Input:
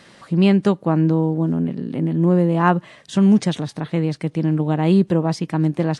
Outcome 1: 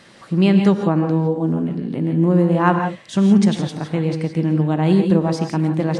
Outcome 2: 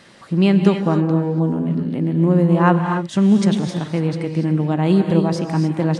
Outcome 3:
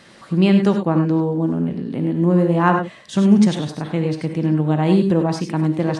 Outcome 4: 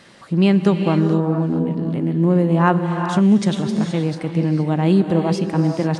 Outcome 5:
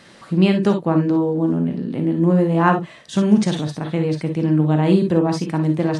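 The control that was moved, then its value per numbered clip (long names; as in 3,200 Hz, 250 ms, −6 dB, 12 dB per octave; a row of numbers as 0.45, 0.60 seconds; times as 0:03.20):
reverb whose tail is shaped and stops, gate: 190, 310, 120, 500, 80 milliseconds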